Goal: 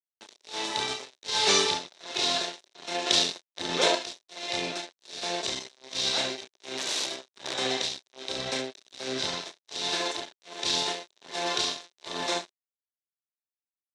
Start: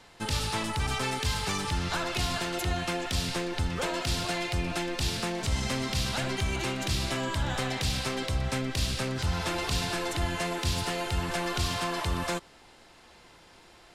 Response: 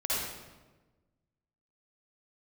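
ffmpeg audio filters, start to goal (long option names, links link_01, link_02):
-filter_complex "[0:a]asettb=1/sr,asplit=3[link_01][link_02][link_03];[link_01]atrim=end=1.284[link_04];[link_02]atrim=start=1.28:end=1.93,asetpts=PTS-STARTPTS,afade=type=in:duration=0.004:curve=qsin,afade=type=out:start_time=0.646:duration=0.004:curve=qsin,acontrast=26[link_05];[link_03]atrim=start=1.926[link_06];[link_04][link_05]acrossfade=duration=0.004:curve1=hsin:curve2=qsin[link_07];[link_07][link_06]acrossfade=duration=0.004:curve1=qsin:curve2=hsin,aecho=1:1:30|69|119.7|185.6|271.3:0.631|0.398|0.251|0.158|0.1,tremolo=f=1.3:d=0.88,aeval=exprs='sgn(val(0))*max(abs(val(0))-0.0133,0)':channel_layout=same,asettb=1/sr,asplit=3[link_08][link_09][link_10];[link_08]atrim=end=3.064[link_11];[link_09]atrim=start=3.06:end=3.95,asetpts=PTS-STARTPTS,afade=type=in:duration=0.004:curve=qsin,afade=type=out:start_time=0.886:duration=0.004:curve=qsin,acontrast=37[link_12];[link_10]atrim=start=3.946[link_13];[link_11][link_12]acrossfade=duration=0.004:curve1=hsin:curve2=qsin[link_14];[link_14][link_13]acrossfade=duration=0.004:curve1=qsin:curve2=hsin,asettb=1/sr,asplit=3[link_15][link_16][link_17];[link_15]atrim=end=6.774[link_18];[link_16]atrim=start=6.77:end=7.54,asetpts=PTS-STARTPTS,afade=type=in:duration=0.004:curve=qsin,afade=type=out:start_time=0.766:duration=0.004:curve=qsin,aeval=exprs='(mod(22.4*val(0)+1,2)-1)/22.4':channel_layout=same[link_19];[link_17]atrim=start=7.536[link_20];[link_18][link_19]acrossfade=duration=0.004:curve1=hsin:curve2=qsin[link_21];[link_21][link_20]acrossfade=duration=0.004:curve1=qsin:curve2=hsin,highpass=340,equalizer=frequency=380:width_type=q:width=4:gain=6,equalizer=frequency=610:width_type=q:width=4:gain=4,equalizer=frequency=1300:width_type=q:width=4:gain=-5,equalizer=frequency=3800:width_type=q:width=4:gain=10,equalizer=frequency=5800:width_type=q:width=4:gain=6,lowpass=frequency=8300:width=0.5412,lowpass=frequency=8300:width=1.3066,volume=2dB"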